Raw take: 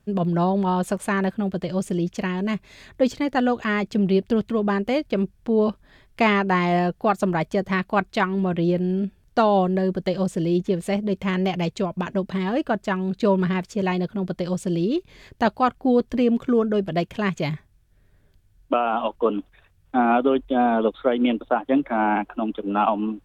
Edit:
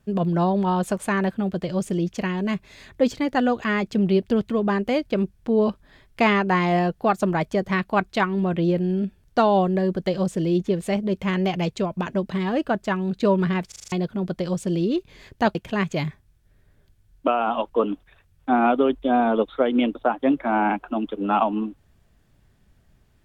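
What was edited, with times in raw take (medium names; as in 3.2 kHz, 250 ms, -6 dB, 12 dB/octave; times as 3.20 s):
13.68 s: stutter in place 0.04 s, 6 plays
15.55–17.01 s: delete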